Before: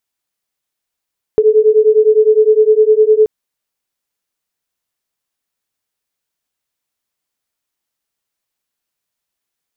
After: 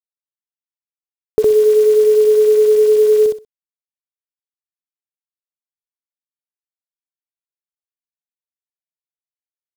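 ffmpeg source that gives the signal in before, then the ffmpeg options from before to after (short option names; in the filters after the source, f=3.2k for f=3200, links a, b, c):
-f lavfi -i "aevalsrc='0.335*(sin(2*PI*427*t)+sin(2*PI*436.8*t))':d=1.88:s=44100"
-af "acompressor=threshold=-12dB:ratio=2,acrusher=bits=6:dc=4:mix=0:aa=0.000001,aecho=1:1:63|126|189:0.708|0.135|0.0256"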